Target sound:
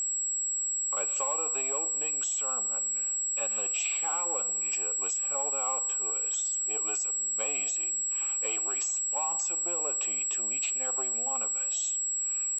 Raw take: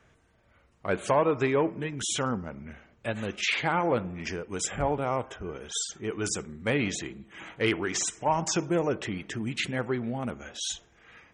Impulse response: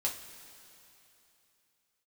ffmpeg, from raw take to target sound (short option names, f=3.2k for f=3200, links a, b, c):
-filter_complex "[0:a]asplit=2[a][b];[b]volume=24dB,asoftclip=hard,volume=-24dB,volume=-5.5dB[c];[a][c]amix=inputs=2:normalize=0,asuperstop=centerf=680:order=8:qfactor=3.5,aeval=exprs='0.335*(cos(1*acos(clip(val(0)/0.335,-1,1)))-cos(1*PI/2))+0.0075*(cos(4*acos(clip(val(0)/0.335,-1,1)))-cos(4*PI/2))+0.00473*(cos(7*acos(clip(val(0)/0.335,-1,1)))-cos(7*PI/2))+0.00944*(cos(8*acos(clip(val(0)/0.335,-1,1)))-cos(8*PI/2))':c=same,bass=f=250:g=-8,treble=f=4k:g=11,bandreject=f=241.2:t=h:w=4,bandreject=f=482.4:t=h:w=4,bandreject=f=723.6:t=h:w=4,bandreject=f=964.8:t=h:w=4,bandreject=f=1.206k:t=h:w=4,bandreject=f=1.4472k:t=h:w=4,bandreject=f=1.6884k:t=h:w=4,bandreject=f=1.9296k:t=h:w=4,acompressor=threshold=-27dB:ratio=6,atempo=0.9,asplit=3[d][e][f];[d]bandpass=f=730:t=q:w=8,volume=0dB[g];[e]bandpass=f=1.09k:t=q:w=8,volume=-6dB[h];[f]bandpass=f=2.44k:t=q:w=8,volume=-9dB[i];[g][h][i]amix=inputs=3:normalize=0,equalizer=f=7.5k:w=0.87:g=8,aeval=exprs='val(0)+0.02*sin(2*PI*7700*n/s)':c=same,volume=6dB"